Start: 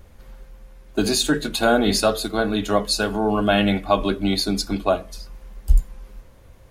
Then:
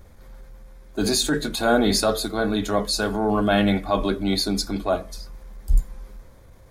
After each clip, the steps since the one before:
parametric band 2,800 Hz −10 dB 0.24 octaves
transient designer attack −6 dB, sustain +1 dB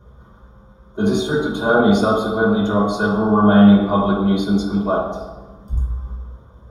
convolution reverb RT60 1.2 s, pre-delay 3 ms, DRR −6 dB
level −15 dB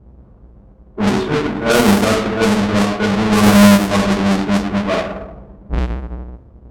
each half-wave held at its own peak
background noise violet −39 dBFS
low-pass that shuts in the quiet parts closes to 560 Hz, open at −7 dBFS
level −2 dB

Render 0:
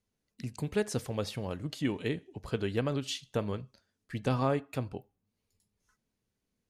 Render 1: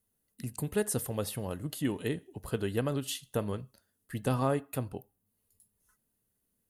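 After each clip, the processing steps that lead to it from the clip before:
high shelf with overshoot 8,000 Hz +13 dB, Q 1.5
notch filter 2,300 Hz, Q 8.5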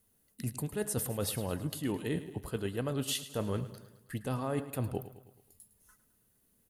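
reversed playback
downward compressor 10 to 1, threshold −38 dBFS, peak gain reduction 15 dB
reversed playback
repeating echo 107 ms, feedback 53%, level −14 dB
level +7.5 dB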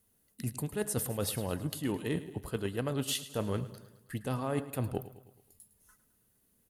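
harmonic generator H 3 −19 dB, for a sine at −18.5 dBFS
level +3.5 dB

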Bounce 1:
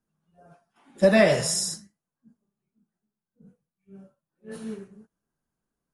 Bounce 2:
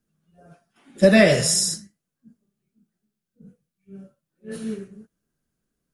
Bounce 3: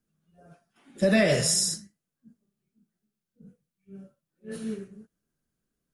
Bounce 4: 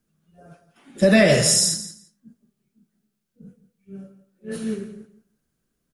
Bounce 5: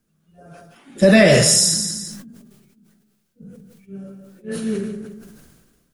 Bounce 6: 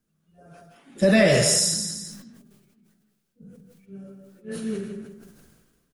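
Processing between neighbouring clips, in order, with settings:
parametric band 910 Hz −10 dB 0.87 octaves; level +6 dB
brickwall limiter −9 dBFS, peak gain reduction 6 dB; level −3.5 dB
repeating echo 170 ms, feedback 15%, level −14 dB; level +6.5 dB
level that may fall only so fast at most 38 dB per second; level +3 dB
far-end echo of a speakerphone 160 ms, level −9 dB; level −6 dB

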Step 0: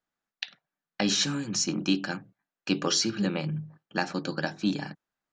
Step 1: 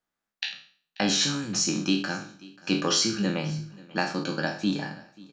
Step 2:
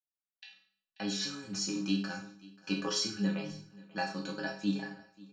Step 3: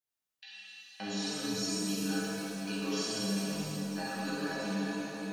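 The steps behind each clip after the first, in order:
peak hold with a decay on every bin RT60 0.46 s; repeating echo 536 ms, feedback 24%, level −22 dB
fade in at the beginning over 1.74 s; stiff-string resonator 97 Hz, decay 0.25 s, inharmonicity 0.008
downward compressor 4 to 1, threshold −40 dBFS, peak gain reduction 13 dB; reverb with rising layers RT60 3.2 s, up +7 semitones, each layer −8 dB, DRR −8.5 dB; level −1.5 dB

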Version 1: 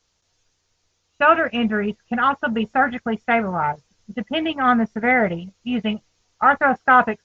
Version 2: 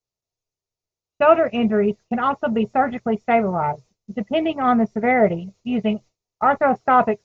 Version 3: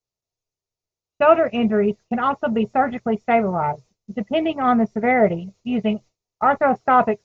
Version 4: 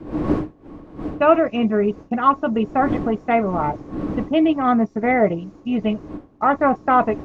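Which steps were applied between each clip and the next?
thirty-one-band graphic EQ 125 Hz +10 dB, 200 Hz +3 dB, 400 Hz +8 dB, 630 Hz +7 dB, 1,600 Hz −11 dB, 3,150 Hz −6 dB; noise gate with hold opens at −45 dBFS; level −1 dB
no processing that can be heard
wind on the microphone 370 Hz −33 dBFS; hollow resonant body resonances 300/1,100 Hz, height 13 dB, ringing for 100 ms; level −1 dB

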